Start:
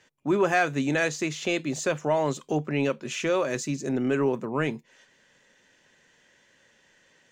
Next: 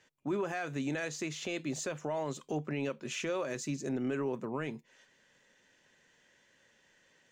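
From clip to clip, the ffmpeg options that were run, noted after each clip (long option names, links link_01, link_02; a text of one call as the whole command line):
ffmpeg -i in.wav -af "alimiter=limit=-20.5dB:level=0:latency=1:release=117,volume=-5.5dB" out.wav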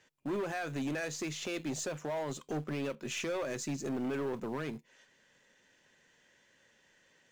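ffmpeg -i in.wav -filter_complex "[0:a]asplit=2[link_01][link_02];[link_02]acrusher=bits=5:dc=4:mix=0:aa=0.000001,volume=-12dB[link_03];[link_01][link_03]amix=inputs=2:normalize=0,volume=31dB,asoftclip=hard,volume=-31dB" out.wav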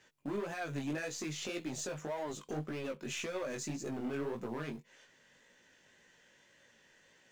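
ffmpeg -i in.wav -af "acompressor=threshold=-42dB:ratio=2,flanger=delay=16:depth=5.3:speed=1.8,volume=5dB" out.wav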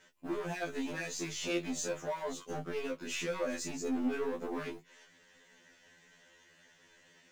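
ffmpeg -i in.wav -af "afftfilt=real='re*2*eq(mod(b,4),0)':imag='im*2*eq(mod(b,4),0)':win_size=2048:overlap=0.75,volume=5dB" out.wav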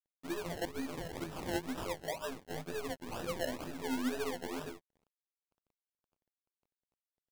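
ffmpeg -i in.wav -af "acrusher=samples=29:mix=1:aa=0.000001:lfo=1:lforange=17.4:lforate=2.1,aeval=exprs='sgn(val(0))*max(abs(val(0))-0.00188,0)':channel_layout=same,volume=-1.5dB" out.wav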